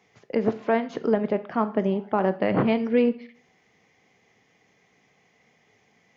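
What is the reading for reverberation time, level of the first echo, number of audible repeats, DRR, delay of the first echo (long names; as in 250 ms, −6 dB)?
0.45 s, no echo audible, no echo audible, 11.0 dB, no echo audible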